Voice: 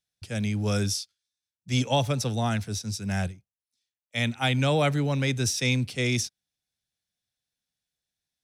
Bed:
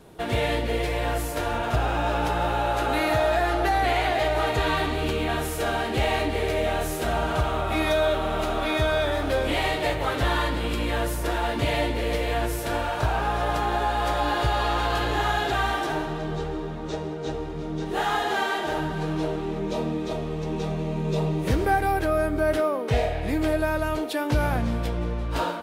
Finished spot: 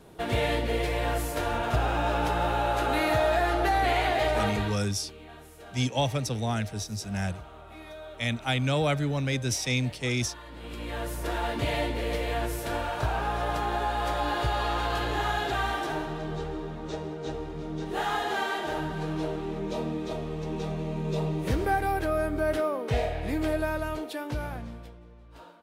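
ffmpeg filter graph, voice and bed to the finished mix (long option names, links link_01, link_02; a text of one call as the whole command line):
ffmpeg -i stem1.wav -i stem2.wav -filter_complex "[0:a]adelay=4050,volume=-2.5dB[link_01];[1:a]volume=15dB,afade=type=out:start_time=4.39:duration=0.4:silence=0.112202,afade=type=in:start_time=10.45:duration=0.93:silence=0.141254,afade=type=out:start_time=23.6:duration=1.4:silence=0.112202[link_02];[link_01][link_02]amix=inputs=2:normalize=0" out.wav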